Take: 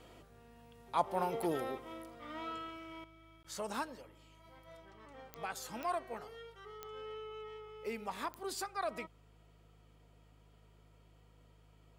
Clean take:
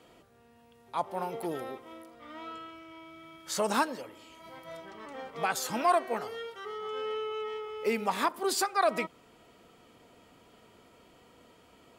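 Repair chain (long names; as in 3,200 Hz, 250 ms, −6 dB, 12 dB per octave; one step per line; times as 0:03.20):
click removal
hum removal 52.1 Hz, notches 3
repair the gap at 0:03.43, 15 ms
level 0 dB, from 0:03.04 +11.5 dB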